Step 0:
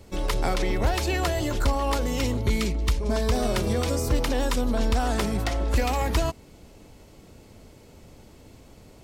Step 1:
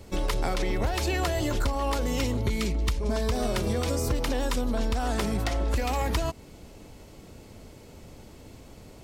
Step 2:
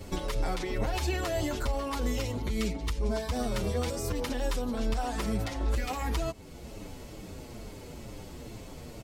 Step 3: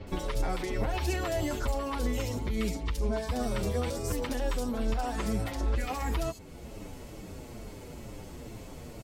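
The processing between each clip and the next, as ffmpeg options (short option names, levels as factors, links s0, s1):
-af "acompressor=threshold=0.0562:ratio=6,volume=1.26"
-filter_complex "[0:a]alimiter=level_in=1.26:limit=0.0631:level=0:latency=1:release=430,volume=0.794,asplit=2[s0][s1];[s1]adelay=7.3,afreqshift=-2.2[s2];[s0][s2]amix=inputs=2:normalize=1,volume=2.24"
-filter_complex "[0:a]acrossover=split=4200[s0][s1];[s1]adelay=70[s2];[s0][s2]amix=inputs=2:normalize=0"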